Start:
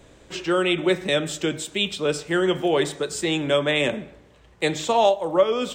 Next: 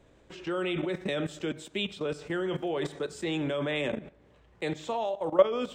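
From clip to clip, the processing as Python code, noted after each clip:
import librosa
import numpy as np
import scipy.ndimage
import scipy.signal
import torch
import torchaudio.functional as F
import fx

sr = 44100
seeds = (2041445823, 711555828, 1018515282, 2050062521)

y = fx.high_shelf(x, sr, hz=3900.0, db=-9.5)
y = fx.level_steps(y, sr, step_db=15)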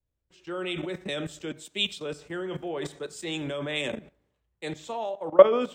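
y = fx.high_shelf(x, sr, hz=4600.0, db=9.5)
y = fx.band_widen(y, sr, depth_pct=100)
y = y * 10.0 ** (-2.0 / 20.0)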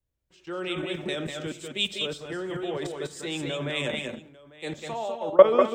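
y = fx.echo_multitap(x, sr, ms=(196, 204, 847), db=(-5.0, -7.5, -19.0))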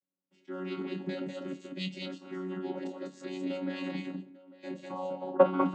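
y = fx.chord_vocoder(x, sr, chord='bare fifth', root=54)
y = fx.doubler(y, sr, ms=26.0, db=-9.5)
y = y * 10.0 ** (-5.5 / 20.0)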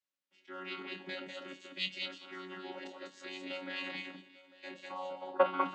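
y = fx.bandpass_q(x, sr, hz=2600.0, q=0.77)
y = fx.echo_wet_highpass(y, sr, ms=396, feedback_pct=53, hz=2000.0, wet_db=-18)
y = y * 10.0 ** (5.0 / 20.0)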